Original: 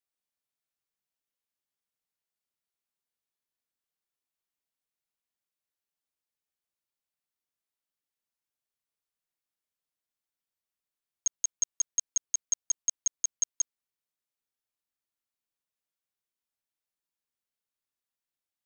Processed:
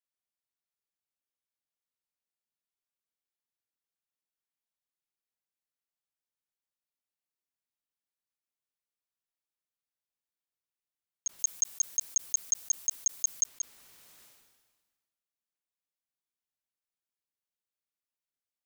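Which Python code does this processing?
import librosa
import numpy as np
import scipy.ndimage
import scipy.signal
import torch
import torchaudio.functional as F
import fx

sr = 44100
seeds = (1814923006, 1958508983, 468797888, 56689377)

y = fx.high_shelf(x, sr, hz=5200.0, db=10.0, at=(11.39, 13.46))
y = fx.sustainer(y, sr, db_per_s=41.0)
y = y * librosa.db_to_amplitude(-6.0)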